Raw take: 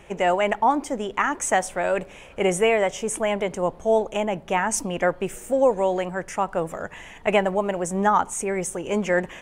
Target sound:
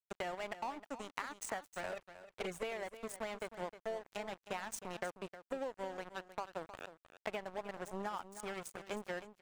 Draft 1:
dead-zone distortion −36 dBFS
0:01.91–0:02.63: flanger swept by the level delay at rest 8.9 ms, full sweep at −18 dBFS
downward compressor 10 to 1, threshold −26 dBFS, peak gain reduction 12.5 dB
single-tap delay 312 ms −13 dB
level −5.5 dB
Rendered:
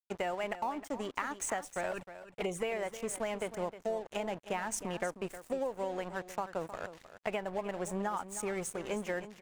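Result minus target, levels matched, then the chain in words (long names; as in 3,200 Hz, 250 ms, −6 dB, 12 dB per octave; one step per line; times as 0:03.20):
dead-zone distortion: distortion −9 dB; downward compressor: peak gain reduction −4.5 dB
dead-zone distortion −26 dBFS
0:01.91–0:02.63: flanger swept by the level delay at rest 8.9 ms, full sweep at −18 dBFS
downward compressor 10 to 1, threshold −32 dBFS, peak gain reduction 17 dB
single-tap delay 312 ms −13 dB
level −5.5 dB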